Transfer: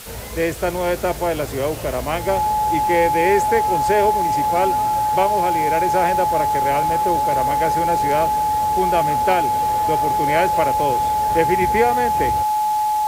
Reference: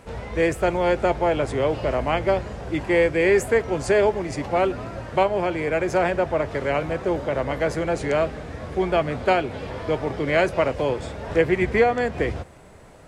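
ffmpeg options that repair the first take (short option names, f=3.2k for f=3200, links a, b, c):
-af "adeclick=t=4,bandreject=f=850:w=30,afwtdn=0.016"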